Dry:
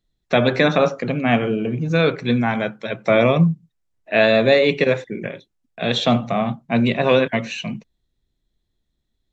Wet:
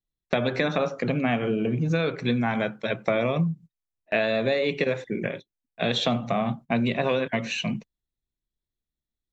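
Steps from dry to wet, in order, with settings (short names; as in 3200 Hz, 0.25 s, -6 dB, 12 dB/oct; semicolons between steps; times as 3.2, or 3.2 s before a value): gate -36 dBFS, range -16 dB; compressor, threshold -21 dBFS, peak gain reduction 11 dB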